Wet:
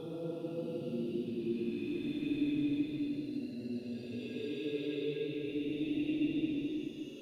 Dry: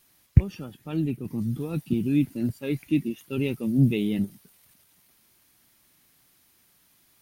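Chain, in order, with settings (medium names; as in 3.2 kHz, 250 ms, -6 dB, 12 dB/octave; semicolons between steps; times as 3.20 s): LFO band-pass square 3.9 Hz 480–3600 Hz; reverb removal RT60 1.7 s; Paulstretch 4.8×, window 0.50 s, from 1.66 s; on a send: reverberation RT60 0.35 s, pre-delay 65 ms, DRR 10 dB; on the sum: trim +1.5 dB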